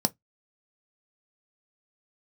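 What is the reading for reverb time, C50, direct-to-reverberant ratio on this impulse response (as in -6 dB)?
no single decay rate, 30.5 dB, 9.0 dB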